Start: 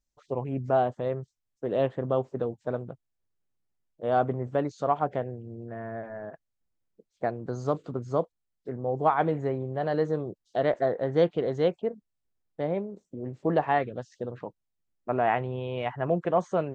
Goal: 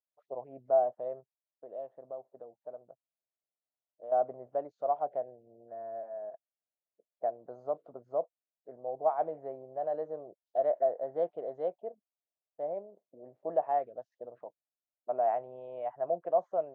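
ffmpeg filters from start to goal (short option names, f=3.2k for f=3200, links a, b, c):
-filter_complex "[0:a]asettb=1/sr,asplit=3[a][b][c];[a]atrim=end=1.204[d];[b]atrim=start=1.2:end=4.12,asetpts=PTS-STARTPTS,afade=t=in:d=0.004:c=qsin,afade=t=out:st=2.916:d=0.004:c=qsin,acompressor=threshold=-41dB:ratio=2[e];[c]atrim=start=4.116[f];[d][e]acrossfade=d=0.004:c1=hsin:c2=qsin[g];[g][f]acrossfade=d=0.004:c1=qsin:c2=hsin,bandpass=f=650:t=q:w=5:csg=0"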